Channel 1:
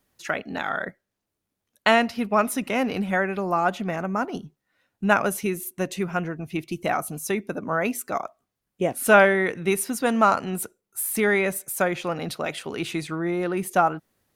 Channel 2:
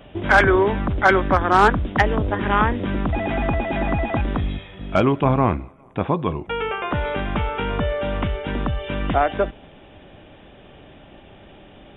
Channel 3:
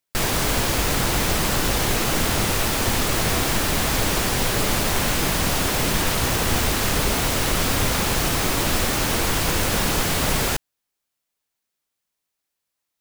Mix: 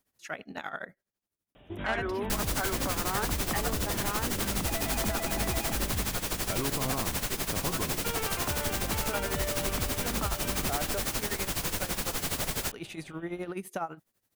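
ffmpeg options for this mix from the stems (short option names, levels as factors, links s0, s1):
-filter_complex "[0:a]acrossover=split=4300[s0][s1];[s1]acompressor=threshold=0.00891:ratio=4:attack=1:release=60[s2];[s0][s2]amix=inputs=2:normalize=0,volume=0.473[s3];[1:a]alimiter=limit=0.211:level=0:latency=1,adelay=1550,volume=0.266[s4];[2:a]adelay=2150,volume=0.794[s5];[s3][s5]amix=inputs=2:normalize=0,tremolo=f=12:d=0.79,acompressor=threshold=0.0316:ratio=6,volume=1[s6];[s4][s6]amix=inputs=2:normalize=0,highshelf=f=5000:g=6"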